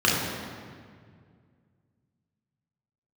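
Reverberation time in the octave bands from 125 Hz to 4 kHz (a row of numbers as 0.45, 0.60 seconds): 3.0, 2.6, 2.2, 1.9, 1.7, 1.4 seconds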